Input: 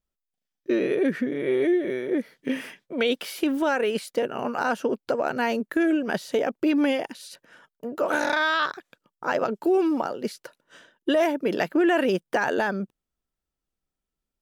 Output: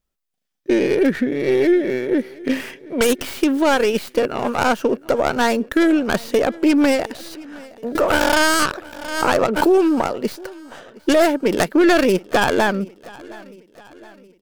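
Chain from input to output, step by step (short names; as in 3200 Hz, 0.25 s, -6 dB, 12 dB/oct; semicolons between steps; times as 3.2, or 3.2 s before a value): tracing distortion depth 0.35 ms; feedback echo 0.717 s, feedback 51%, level -22 dB; 7.95–10.19 backwards sustainer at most 61 dB/s; gain +6.5 dB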